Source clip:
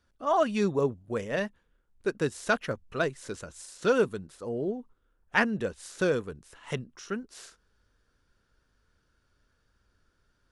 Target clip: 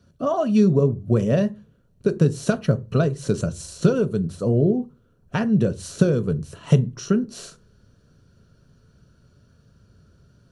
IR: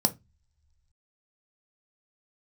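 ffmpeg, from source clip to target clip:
-filter_complex "[0:a]acompressor=threshold=0.0251:ratio=8,asplit=2[s0][s1];[1:a]atrim=start_sample=2205,asetrate=32634,aresample=44100,lowshelf=f=360:g=9.5[s2];[s1][s2]afir=irnorm=-1:irlink=0,volume=0.422[s3];[s0][s3]amix=inputs=2:normalize=0,volume=1.26"

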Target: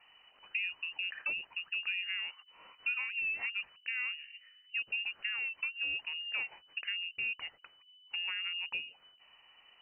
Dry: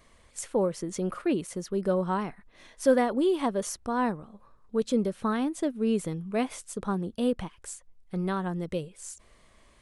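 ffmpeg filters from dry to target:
-filter_complex "[0:a]acrossover=split=100|570[s0][s1][s2];[s0]acompressor=threshold=0.00112:ratio=4[s3];[s1]acompressor=threshold=0.0178:ratio=4[s4];[s2]acompressor=threshold=0.00891:ratio=4[s5];[s3][s4][s5]amix=inputs=3:normalize=0,lowpass=f=2600:t=q:w=0.5098,lowpass=f=2600:t=q:w=0.6013,lowpass=f=2600:t=q:w=0.9,lowpass=f=2600:t=q:w=2.563,afreqshift=-3000,volume=0.794"

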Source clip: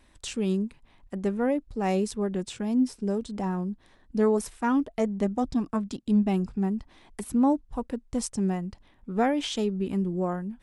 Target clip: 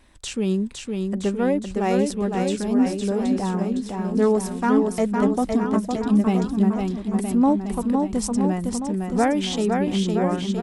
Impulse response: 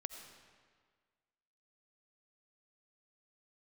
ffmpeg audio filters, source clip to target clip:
-af "aecho=1:1:510|969|1382|1754|2089:0.631|0.398|0.251|0.158|0.1,volume=1.58"

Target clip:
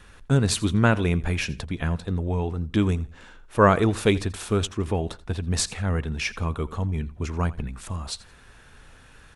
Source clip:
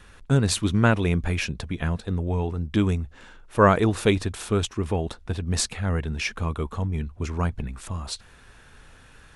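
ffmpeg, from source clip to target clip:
-af "aecho=1:1:84|168:0.106|0.0265"

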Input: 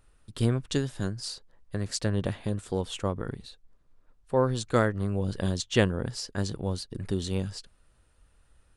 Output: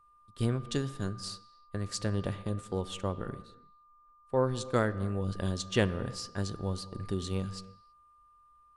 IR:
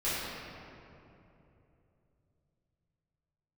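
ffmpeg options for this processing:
-filter_complex "[0:a]aeval=exprs='val(0)+0.00447*sin(2*PI*1200*n/s)':c=same,agate=range=0.316:threshold=0.0112:ratio=16:detection=peak,asplit=2[s0][s1];[1:a]atrim=start_sample=2205,afade=t=out:st=0.38:d=0.01,atrim=end_sample=17199,lowpass=7700[s2];[s1][s2]afir=irnorm=-1:irlink=0,volume=0.0708[s3];[s0][s3]amix=inputs=2:normalize=0,volume=0.596"

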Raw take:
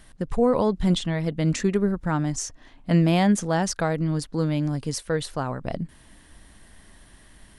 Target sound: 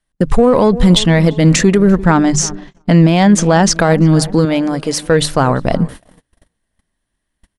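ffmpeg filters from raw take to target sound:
-filter_complex "[0:a]bandreject=f=50:t=h:w=6,bandreject=f=100:t=h:w=6,bandreject=f=150:t=h:w=6,asplit=2[s0][s1];[s1]asoftclip=type=hard:threshold=0.0668,volume=0.299[s2];[s0][s2]amix=inputs=2:normalize=0,adynamicequalizer=threshold=0.00708:dfrequency=100:dqfactor=2.2:tfrequency=100:tqfactor=2.2:attack=5:release=100:ratio=0.375:range=2.5:mode=cutabove:tftype=bell,asettb=1/sr,asplit=3[s3][s4][s5];[s3]atrim=end=2.044[s6];[s4]atrim=start=2.04:end=3.77,asetpts=PTS-STARTPTS,afade=t=in:d=0.004:c=qsin,afade=t=out:st=1.726:d=0.004:c=qsin,lowpass=7300[s7];[s5]atrim=start=3.766[s8];[s6][s7]acrossfade=d=0.004:c1=hsin:c2=qsin[s9];[s9][s8]acrossfade=d=0.004:c1=qsin:c2=hsin,asettb=1/sr,asplit=3[s10][s11][s12];[s10]atrim=end=4.454[s13];[s11]atrim=start=4.45:end=5.06,asetpts=PTS-STARTPTS,afade=t=in:d=0.004:c=qsin,afade=t=out:st=0.606:d=0.004:c=qsin,bass=f=250:g=-13,treble=f=4000:g=-6[s14];[s12]atrim=start=5.056[s15];[s13][s14]acrossfade=d=0.004:c1=hsin:c2=qsin[s16];[s16][s15]acrossfade=d=0.004:c1=qsin:c2=hsin,asplit=2[s17][s18];[s18]adelay=343,lowpass=f=1500:p=1,volume=0.106,asplit=2[s19][s20];[s20]adelay=343,lowpass=f=1500:p=1,volume=0.51,asplit=2[s21][s22];[s22]adelay=343,lowpass=f=1500:p=1,volume=0.51,asplit=2[s23][s24];[s24]adelay=343,lowpass=f=1500:p=1,volume=0.51[s25];[s17][s19][s21][s23][s25]amix=inputs=5:normalize=0,agate=range=0.0112:threshold=0.01:ratio=16:detection=peak,alimiter=level_in=5.96:limit=0.891:release=50:level=0:latency=1,volume=0.891"

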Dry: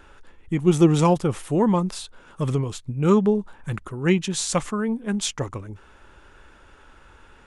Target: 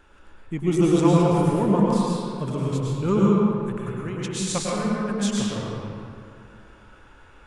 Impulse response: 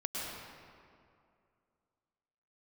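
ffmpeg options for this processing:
-filter_complex "[0:a]asettb=1/sr,asplit=3[s0][s1][s2];[s0]atrim=end=3.214[s3];[s1]atrim=start=3.21:end=4.22,asetpts=PTS-STARTPTS,afade=t=in:d=0.004:c=qsin,afade=t=out:st=1.006:d=0.004:c=qsin,acompressor=threshold=0.0447:ratio=6[s4];[s2]atrim=start=4.216[s5];[s3][s4]acrossfade=d=0.004:c1=hsin:c2=qsin[s6];[s6][s5]acrossfade=d=0.004:c1=qsin:c2=hsin[s7];[1:a]atrim=start_sample=2205[s8];[s7][s8]afir=irnorm=-1:irlink=0,volume=0.668"

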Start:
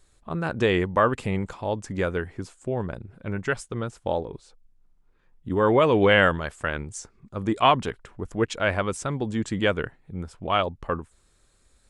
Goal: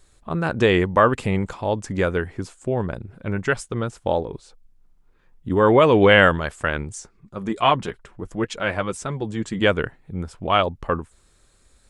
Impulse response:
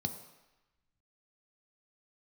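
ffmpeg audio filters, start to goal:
-filter_complex "[0:a]asettb=1/sr,asplit=3[s0][s1][s2];[s0]atrim=end=6.954[s3];[s1]atrim=start=6.95:end=9.61,asetpts=PTS-STARTPTS,afade=t=in:d=0.004:c=qsin,afade=t=out:st=2.656:d=0.004:c=qsin,flanger=delay=4.5:depth=2.2:regen=-41:speed=1.9:shape=triangular[s4];[s2]atrim=start=9.606[s5];[s3][s4]acrossfade=d=0.004:c1=hsin:c2=qsin[s6];[s6][s5]acrossfade=d=0.004:c1=qsin:c2=hsin,volume=1.68"

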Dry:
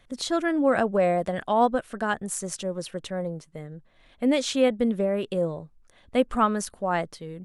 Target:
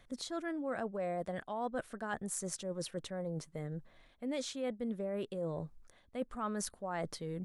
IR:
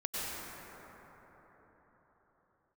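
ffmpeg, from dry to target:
-af "equalizer=f=2800:t=o:w=0.41:g=-4.5,areverse,acompressor=threshold=0.0126:ratio=5,areverse,volume=1.12"

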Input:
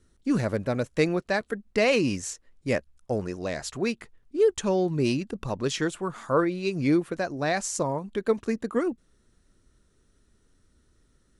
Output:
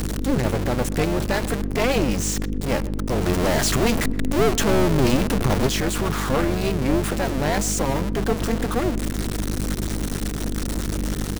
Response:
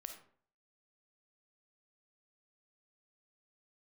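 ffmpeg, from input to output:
-filter_complex "[0:a]aeval=exprs='val(0)+0.5*0.075*sgn(val(0))':c=same,asettb=1/sr,asplit=3[s0][s1][s2];[s0]atrim=end=3.264[s3];[s1]atrim=start=3.26:end=5.67,asetpts=PTS-STARTPTS,afade=t=in:d=0.004:c=qsin,afade=t=out:st=2.406:d=0.004:c=qsin,acontrast=36[s4];[s2]atrim=start=5.666[s5];[s3][s4]acrossfade=d=0.004:c1=hsin:c2=qsin[s6];[s6][s5]acrossfade=d=0.004:c1=qsin:c2=hsin,aeval=exprs='(tanh(7.94*val(0)+0.55)-tanh(0.55))/7.94':c=same,aeval=exprs='val(0)+0.0447*(sin(2*PI*50*n/s)+sin(2*PI*2*50*n/s)/2+sin(2*PI*3*50*n/s)/3+sin(2*PI*4*50*n/s)/4+sin(2*PI*5*50*n/s)/5)':c=same,tremolo=f=260:d=0.857,asplit=2[s7][s8];[s8]adelay=124,lowpass=f=1600:p=1,volume=0.126,asplit=2[s9][s10];[s10]adelay=124,lowpass=f=1600:p=1,volume=0.46,asplit=2[s11][s12];[s12]adelay=124,lowpass=f=1600:p=1,volume=0.46,asplit=2[s13][s14];[s14]adelay=124,lowpass=f=1600:p=1,volume=0.46[s15];[s7][s9][s11][s13][s15]amix=inputs=5:normalize=0,volume=1.88"

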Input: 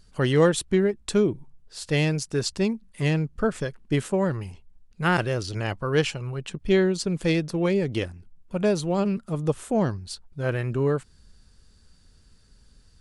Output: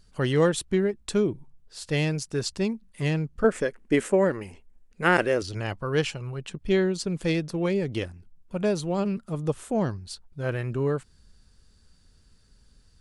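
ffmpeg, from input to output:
-filter_complex "[0:a]asettb=1/sr,asplit=3[s0][s1][s2];[s0]atrim=end=3.444[s3];[s1]atrim=start=3.44:end=5.42,asetpts=PTS-STARTPTS,afade=t=in:d=0.004:c=qsin,afade=t=out:st=1.976:d=0.004:c=qsin,equalizer=f=125:t=o:w=1:g=-10,equalizer=f=250:t=o:w=1:g=6,equalizer=f=500:t=o:w=1:g=7,equalizer=f=2000:t=o:w=1:g=8,equalizer=f=4000:t=o:w=1:g=-4,equalizer=f=8000:t=o:w=1:g=5[s4];[s2]atrim=start=5.416[s5];[s3][s4]acrossfade=d=0.004:c1=hsin:c2=qsin[s6];[s6][s5]acrossfade=d=0.004:c1=qsin:c2=hsin,volume=0.75"

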